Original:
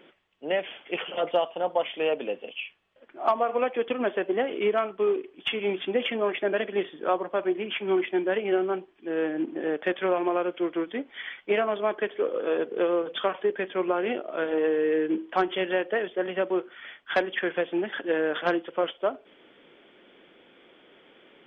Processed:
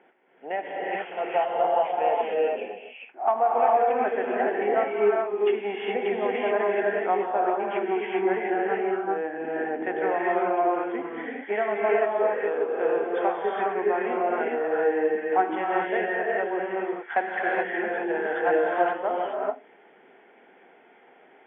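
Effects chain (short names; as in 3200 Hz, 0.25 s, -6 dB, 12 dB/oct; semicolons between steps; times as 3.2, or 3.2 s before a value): speaker cabinet 310–2000 Hz, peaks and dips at 320 Hz -7 dB, 550 Hz -8 dB, 780 Hz +9 dB, 1200 Hz -9 dB; non-linear reverb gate 0.45 s rising, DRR -4 dB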